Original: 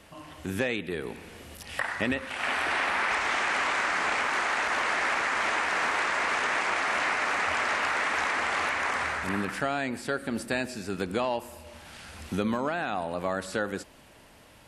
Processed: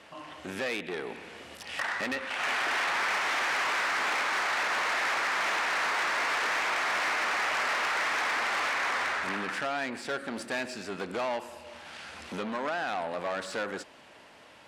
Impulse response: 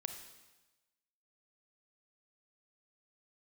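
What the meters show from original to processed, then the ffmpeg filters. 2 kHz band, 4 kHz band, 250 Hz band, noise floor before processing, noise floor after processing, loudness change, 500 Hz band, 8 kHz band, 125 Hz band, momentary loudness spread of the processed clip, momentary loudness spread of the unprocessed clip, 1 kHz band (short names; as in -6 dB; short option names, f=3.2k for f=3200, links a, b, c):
-1.0 dB, +1.0 dB, -6.5 dB, -54 dBFS, -53 dBFS, -1.5 dB, -3.0 dB, -0.5 dB, -10.0 dB, 13 LU, 10 LU, -1.5 dB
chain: -af "aeval=exprs='(tanh(31.6*val(0)+0.35)-tanh(0.35))/31.6':c=same,highpass=f=480:p=1,adynamicsmooth=sensitivity=7:basefreq=6.1k,volume=5dB"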